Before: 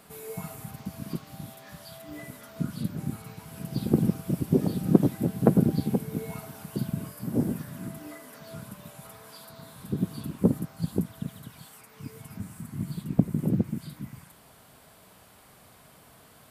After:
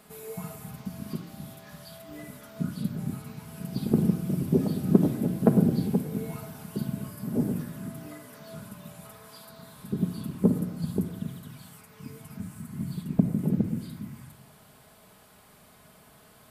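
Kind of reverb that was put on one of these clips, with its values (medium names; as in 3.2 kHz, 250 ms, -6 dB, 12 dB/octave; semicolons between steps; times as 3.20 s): simulated room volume 3100 m³, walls furnished, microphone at 1.4 m; trim -2 dB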